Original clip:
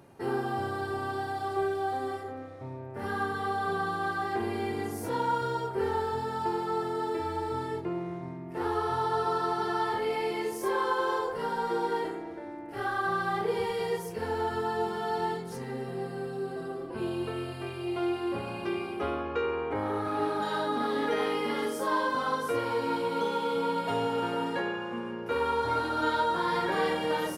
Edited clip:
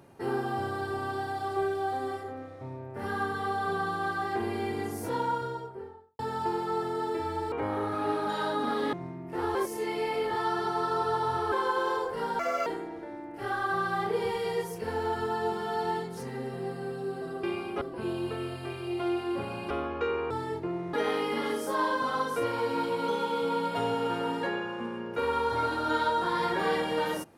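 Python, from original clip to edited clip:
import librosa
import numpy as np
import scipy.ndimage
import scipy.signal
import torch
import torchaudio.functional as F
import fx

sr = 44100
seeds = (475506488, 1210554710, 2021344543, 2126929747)

y = fx.studio_fade_out(x, sr, start_s=5.07, length_s=1.12)
y = fx.edit(y, sr, fx.swap(start_s=7.52, length_s=0.63, other_s=19.65, other_length_s=1.41),
    fx.reverse_span(start_s=8.77, length_s=1.97),
    fx.speed_span(start_s=11.61, length_s=0.4, speed=1.46),
    fx.move(start_s=18.67, length_s=0.38, to_s=16.78), tone=tone)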